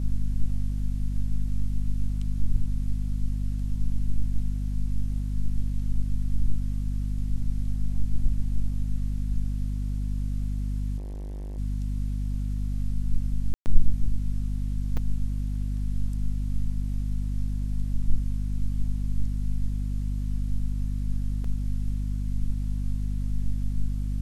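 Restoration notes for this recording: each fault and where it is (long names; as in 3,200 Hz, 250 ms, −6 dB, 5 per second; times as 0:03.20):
mains hum 50 Hz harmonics 5 −28 dBFS
0:10.97–0:11.58: clipping −32.5 dBFS
0:13.54–0:13.66: drop-out 119 ms
0:14.97–0:14.98: drop-out 5.1 ms
0:21.44: drop-out 3.8 ms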